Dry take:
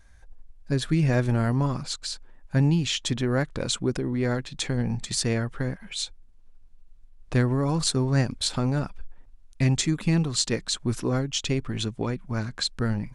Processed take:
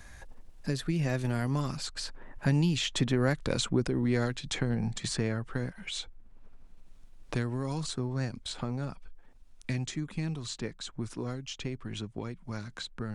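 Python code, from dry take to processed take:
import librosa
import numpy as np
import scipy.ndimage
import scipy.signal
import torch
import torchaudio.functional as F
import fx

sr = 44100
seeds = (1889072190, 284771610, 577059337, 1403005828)

y = fx.doppler_pass(x, sr, speed_mps=12, closest_m=9.2, pass_at_s=3.45)
y = fx.band_squash(y, sr, depth_pct=70)
y = y * librosa.db_to_amplitude(2.5)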